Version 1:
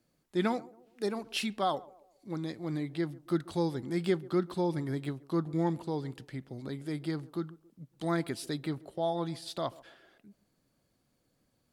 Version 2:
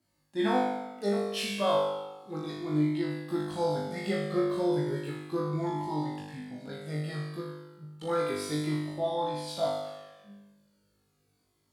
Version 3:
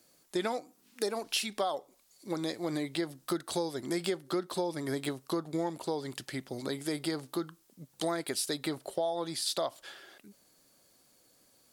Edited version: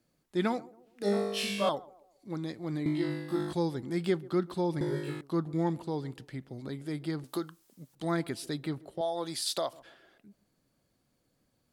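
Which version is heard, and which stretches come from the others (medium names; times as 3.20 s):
1
1.03–1.69 s: from 2
2.86–3.53 s: from 2
4.81–5.21 s: from 2
7.24–7.95 s: from 3
9.01–9.73 s: from 3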